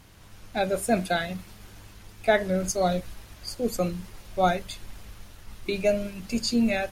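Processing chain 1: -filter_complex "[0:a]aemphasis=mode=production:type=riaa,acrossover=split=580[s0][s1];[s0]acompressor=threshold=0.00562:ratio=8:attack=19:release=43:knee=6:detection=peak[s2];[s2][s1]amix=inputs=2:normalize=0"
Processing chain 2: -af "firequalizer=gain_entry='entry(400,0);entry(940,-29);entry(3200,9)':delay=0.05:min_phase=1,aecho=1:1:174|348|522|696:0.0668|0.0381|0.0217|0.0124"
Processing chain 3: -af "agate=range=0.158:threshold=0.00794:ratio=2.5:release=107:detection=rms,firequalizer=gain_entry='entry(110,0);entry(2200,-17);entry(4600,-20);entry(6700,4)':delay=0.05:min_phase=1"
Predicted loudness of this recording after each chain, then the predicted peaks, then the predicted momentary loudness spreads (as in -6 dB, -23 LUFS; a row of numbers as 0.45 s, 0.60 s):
-25.5 LUFS, -27.0 LUFS, -30.0 LUFS; -5.0 dBFS, -7.0 dBFS, -13.0 dBFS; 18 LU, 21 LU, 20 LU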